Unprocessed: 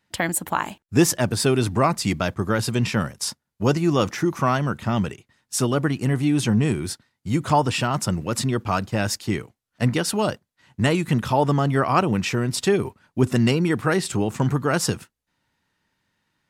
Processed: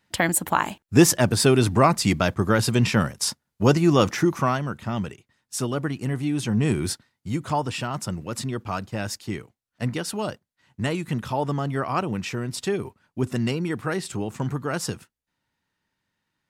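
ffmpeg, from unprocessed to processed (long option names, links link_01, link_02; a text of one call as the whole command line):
ffmpeg -i in.wav -af "volume=9.5dB,afade=type=out:start_time=4.21:duration=0.42:silence=0.446684,afade=type=in:start_time=6.49:duration=0.38:silence=0.421697,afade=type=out:start_time=6.87:duration=0.53:silence=0.375837" out.wav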